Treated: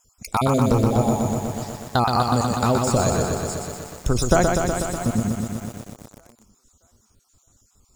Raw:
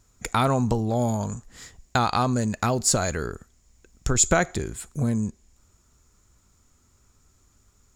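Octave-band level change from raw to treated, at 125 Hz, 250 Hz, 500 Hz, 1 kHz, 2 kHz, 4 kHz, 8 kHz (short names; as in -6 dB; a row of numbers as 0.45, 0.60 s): +4.0, +4.5, +5.5, +4.0, -0.5, +1.5, -3.0 dB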